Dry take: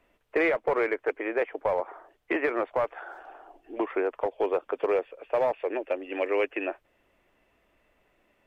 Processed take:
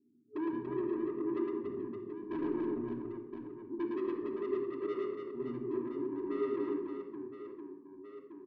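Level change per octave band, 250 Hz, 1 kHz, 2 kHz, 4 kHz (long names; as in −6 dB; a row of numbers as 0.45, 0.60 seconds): +0.5 dB, −14.0 dB, −21.5 dB, can't be measured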